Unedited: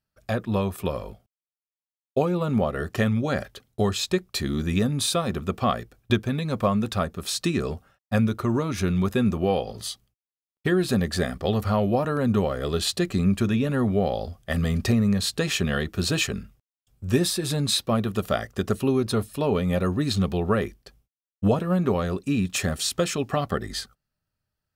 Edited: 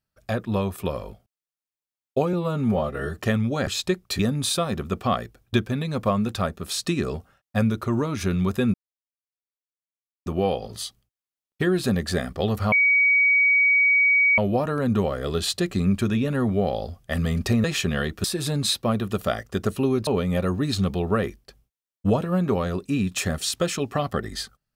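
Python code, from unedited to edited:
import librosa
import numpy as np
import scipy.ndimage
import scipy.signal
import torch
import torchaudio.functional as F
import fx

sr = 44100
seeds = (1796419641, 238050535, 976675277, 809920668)

y = fx.edit(x, sr, fx.stretch_span(start_s=2.33, length_s=0.56, factor=1.5),
    fx.cut(start_s=3.39, length_s=0.52),
    fx.cut(start_s=4.43, length_s=0.33),
    fx.insert_silence(at_s=9.31, length_s=1.52),
    fx.insert_tone(at_s=11.77, length_s=1.66, hz=2260.0, db=-15.0),
    fx.cut(start_s=15.03, length_s=0.37),
    fx.cut(start_s=16.0, length_s=1.28),
    fx.cut(start_s=19.11, length_s=0.34), tone=tone)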